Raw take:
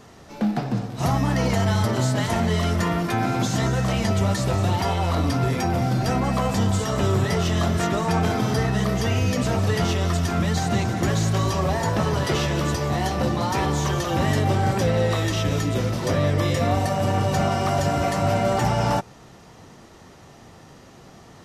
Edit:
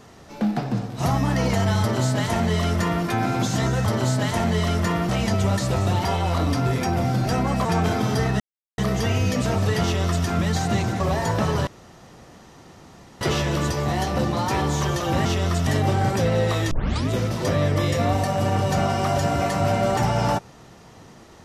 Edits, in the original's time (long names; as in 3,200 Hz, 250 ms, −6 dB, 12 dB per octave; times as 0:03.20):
0:01.82–0:03.05: duplicate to 0:03.86
0:06.42–0:08.04: remove
0:08.79: splice in silence 0.38 s
0:09.84–0:10.26: duplicate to 0:14.29
0:11.01–0:11.58: remove
0:12.25: splice in room tone 1.54 s
0:15.33: tape start 0.38 s